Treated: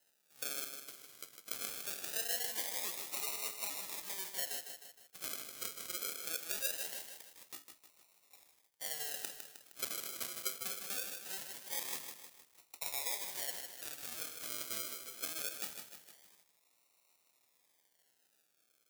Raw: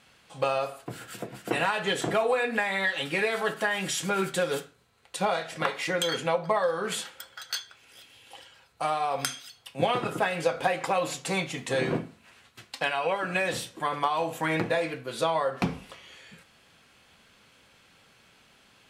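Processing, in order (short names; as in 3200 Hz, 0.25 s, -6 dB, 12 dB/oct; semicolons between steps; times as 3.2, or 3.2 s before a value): decimation with a swept rate 38×, swing 60% 0.22 Hz; differentiator; lo-fi delay 0.155 s, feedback 55%, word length 8-bit, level -7 dB; gain -2.5 dB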